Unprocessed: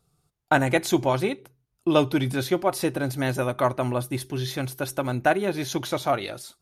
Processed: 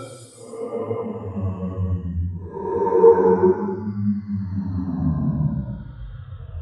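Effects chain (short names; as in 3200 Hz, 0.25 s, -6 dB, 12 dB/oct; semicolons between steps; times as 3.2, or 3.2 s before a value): tape stop at the end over 1.94 s; Paulstretch 5.5×, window 0.25 s, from 4.87; spectral expander 1.5:1; gain +5 dB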